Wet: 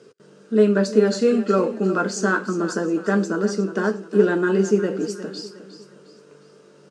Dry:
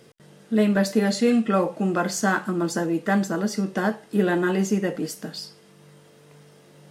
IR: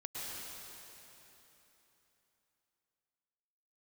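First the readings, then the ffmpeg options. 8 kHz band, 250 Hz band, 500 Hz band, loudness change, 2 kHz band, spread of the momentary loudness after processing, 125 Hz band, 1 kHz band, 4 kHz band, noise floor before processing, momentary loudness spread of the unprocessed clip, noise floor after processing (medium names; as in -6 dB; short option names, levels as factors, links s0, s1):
-1.0 dB, +1.0 dB, +6.0 dB, +2.5 dB, +1.5 dB, 9 LU, 0.0 dB, -0.5 dB, -1.0 dB, -53 dBFS, 10 LU, -51 dBFS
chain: -filter_complex "[0:a]highpass=160,equalizer=f=410:t=q:w=4:g=10,equalizer=f=760:t=q:w=4:g=-8,equalizer=f=1400:t=q:w=4:g=6,equalizer=f=2000:t=q:w=4:g=-9,equalizer=f=3400:t=q:w=4:g=-6,lowpass=f=7900:w=0.5412,lowpass=f=7900:w=1.3066,aecho=1:1:359|718|1077|1436:0.224|0.0873|0.0341|0.0133,asplit=2[s0][s1];[1:a]atrim=start_sample=2205,atrim=end_sample=4410,adelay=10[s2];[s1][s2]afir=irnorm=-1:irlink=0,volume=0.531[s3];[s0][s3]amix=inputs=2:normalize=0"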